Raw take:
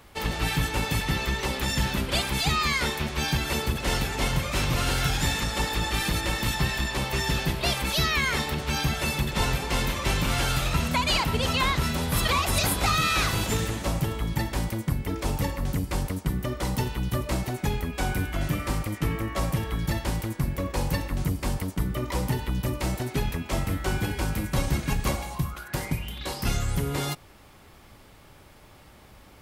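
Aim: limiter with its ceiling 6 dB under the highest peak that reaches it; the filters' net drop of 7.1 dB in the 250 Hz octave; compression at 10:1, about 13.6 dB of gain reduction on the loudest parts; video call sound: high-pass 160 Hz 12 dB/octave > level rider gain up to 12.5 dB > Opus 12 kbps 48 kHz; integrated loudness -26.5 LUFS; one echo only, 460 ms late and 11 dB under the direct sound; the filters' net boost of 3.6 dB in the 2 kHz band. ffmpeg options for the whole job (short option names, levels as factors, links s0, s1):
-af "equalizer=f=250:t=o:g=-8.5,equalizer=f=2000:t=o:g=4.5,acompressor=threshold=0.02:ratio=10,alimiter=level_in=1.68:limit=0.0631:level=0:latency=1,volume=0.596,highpass=160,aecho=1:1:460:0.282,dynaudnorm=m=4.22,volume=1.88" -ar 48000 -c:a libopus -b:a 12k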